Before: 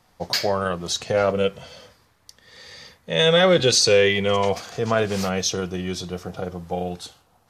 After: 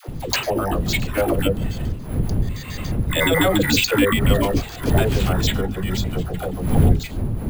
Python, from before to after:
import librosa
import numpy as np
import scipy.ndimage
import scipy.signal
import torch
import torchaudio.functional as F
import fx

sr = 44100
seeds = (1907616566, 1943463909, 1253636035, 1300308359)

y = fx.pitch_trill(x, sr, semitones=-9.5, every_ms=71)
y = fx.dmg_wind(y, sr, seeds[0], corner_hz=120.0, level_db=-22.0)
y = fx.high_shelf(y, sr, hz=3200.0, db=6.0)
y = np.repeat(scipy.signal.resample_poly(y, 1, 4), 4)[:len(y)]
y = fx.peak_eq(y, sr, hz=8500.0, db=-4.0, octaves=1.0)
y = fx.dispersion(y, sr, late='lows', ms=79.0, hz=540.0)
y = fx.band_squash(y, sr, depth_pct=40)